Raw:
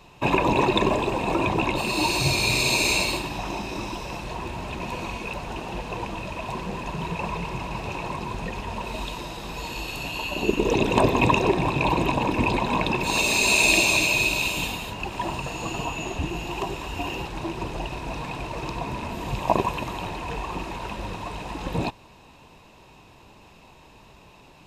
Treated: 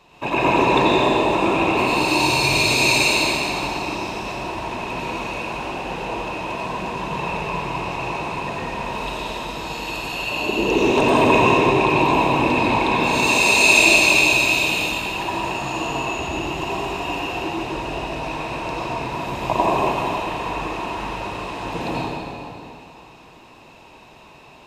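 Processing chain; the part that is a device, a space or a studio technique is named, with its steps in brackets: low shelf 180 Hz -10.5 dB; swimming-pool hall (reverb RT60 2.7 s, pre-delay 80 ms, DRR -7 dB; high shelf 5800 Hz -5 dB); gain -1 dB

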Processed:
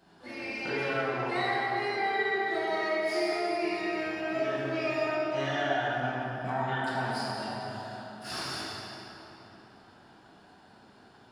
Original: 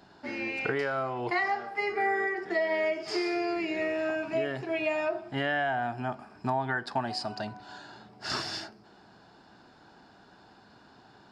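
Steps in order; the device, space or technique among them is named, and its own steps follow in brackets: shimmer-style reverb (harmoniser +12 st -11 dB; reverb RT60 3.5 s, pre-delay 3 ms, DRR -8 dB); gain -9 dB

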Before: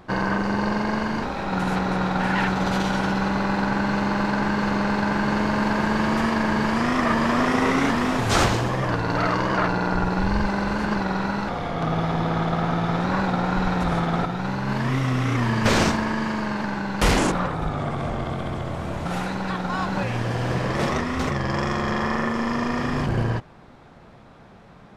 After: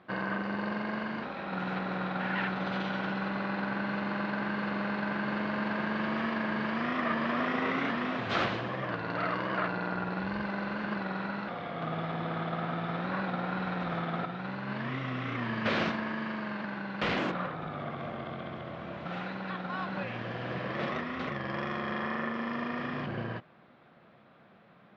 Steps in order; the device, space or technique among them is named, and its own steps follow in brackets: kitchen radio (speaker cabinet 190–3700 Hz, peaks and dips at 280 Hz -4 dB, 420 Hz -5 dB, 880 Hz -7 dB); gain -7 dB

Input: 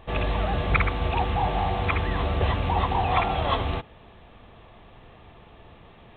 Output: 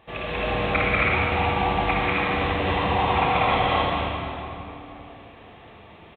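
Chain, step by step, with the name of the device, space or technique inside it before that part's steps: stadium PA (HPF 170 Hz 6 dB/oct; bell 2300 Hz +4 dB 0.77 oct; loudspeakers at several distances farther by 65 m 0 dB, 92 m -1 dB; reverb RT60 3.1 s, pre-delay 18 ms, DRR -2.5 dB); gain -5 dB

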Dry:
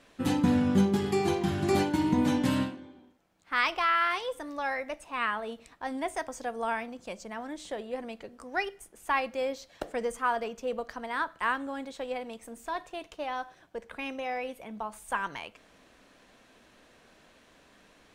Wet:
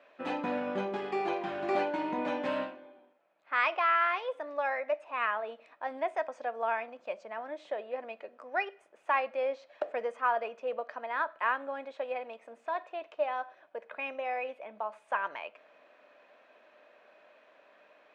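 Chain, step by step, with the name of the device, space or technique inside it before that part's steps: tin-can telephone (BPF 520–2200 Hz; small resonant body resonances 600/2500 Hz, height 11 dB, ringing for 45 ms)

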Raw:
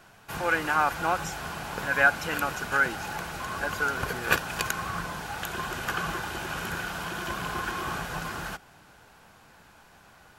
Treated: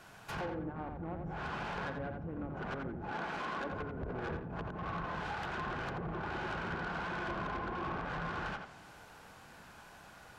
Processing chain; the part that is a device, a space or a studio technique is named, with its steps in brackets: treble ducked by the level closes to 300 Hz, closed at -25 dBFS; rockabilly slapback (tube stage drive 35 dB, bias 0.35; tape echo 86 ms, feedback 27%, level -3.5 dB, low-pass 2500 Hz); 3.11–3.72 resonant low shelf 150 Hz -10 dB, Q 1.5

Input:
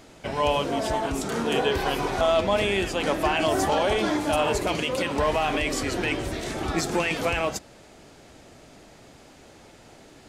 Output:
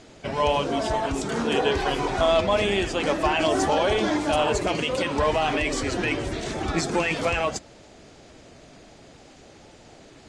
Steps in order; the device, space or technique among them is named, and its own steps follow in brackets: clip after many re-uploads (LPF 8800 Hz 24 dB/oct; bin magnitudes rounded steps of 15 dB); gain +1.5 dB

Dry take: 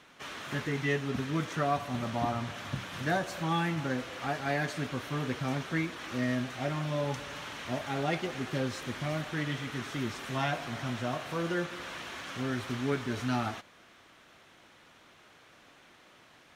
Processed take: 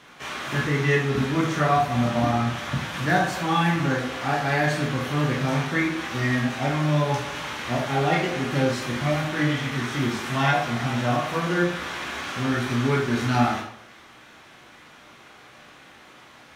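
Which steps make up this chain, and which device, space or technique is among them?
bathroom (reverb RT60 0.60 s, pre-delay 13 ms, DRR -3 dB); gain +5 dB

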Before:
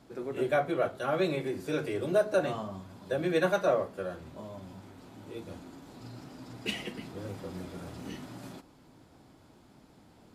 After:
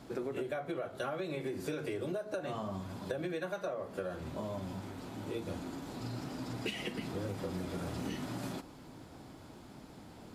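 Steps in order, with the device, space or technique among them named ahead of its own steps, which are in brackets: serial compression, leveller first (compressor 3:1, threshold -30 dBFS, peak gain reduction 8 dB; compressor 10:1, threshold -40 dBFS, peak gain reduction 13.5 dB); gain +6 dB

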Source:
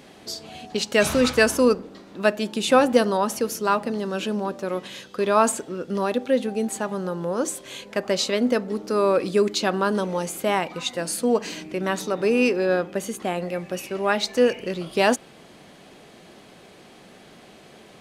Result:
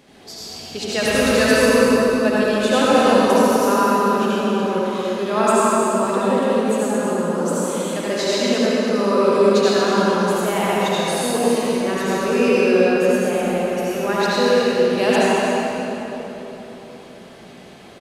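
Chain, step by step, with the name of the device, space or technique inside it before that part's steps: cave (echo 0.23 s -8 dB; reverb RT60 3.7 s, pre-delay 68 ms, DRR -8.5 dB); gain -4.5 dB

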